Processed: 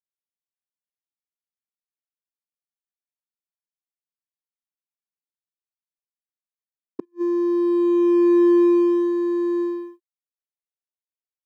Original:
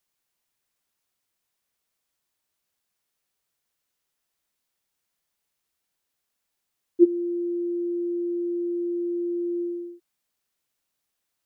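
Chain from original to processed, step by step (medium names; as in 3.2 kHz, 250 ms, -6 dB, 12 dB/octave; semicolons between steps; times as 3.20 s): bass shelf 280 Hz +4.5 dB; waveshaping leveller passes 1; inverted gate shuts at -16 dBFS, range -34 dB; high-pass sweep 190 Hz -> 430 Hz, 7.14–9.13 s; power-law waveshaper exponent 1.4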